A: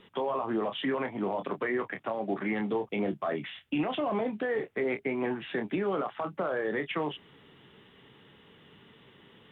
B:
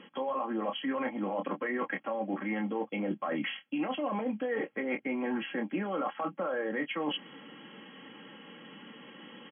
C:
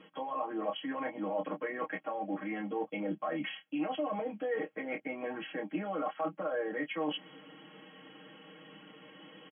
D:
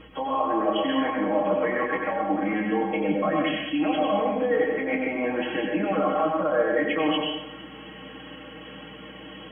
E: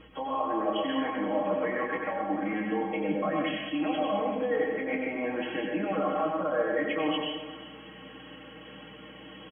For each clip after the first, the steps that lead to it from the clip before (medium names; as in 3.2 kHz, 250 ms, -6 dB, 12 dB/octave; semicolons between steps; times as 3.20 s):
FFT band-pass 120–3400 Hz; comb 3.7 ms, depth 73%; reverse; compression 8:1, threshold -36 dBFS, peak gain reduction 14.5 dB; reverse; trim +6 dB
peaking EQ 640 Hz +5.5 dB 0.48 oct; comb 6.4 ms, depth 99%; trim -7 dB
hum 60 Hz, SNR 24 dB; plate-style reverb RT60 0.87 s, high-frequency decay 0.95×, pre-delay 80 ms, DRR -0.5 dB; trim +8.5 dB
delay 392 ms -16 dB; trim -5 dB